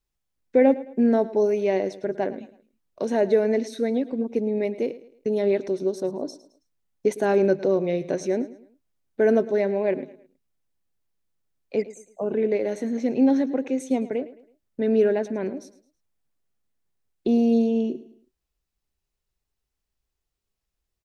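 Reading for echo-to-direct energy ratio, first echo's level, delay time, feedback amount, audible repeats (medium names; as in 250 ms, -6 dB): -16.5 dB, -17.0 dB, 108 ms, 37%, 3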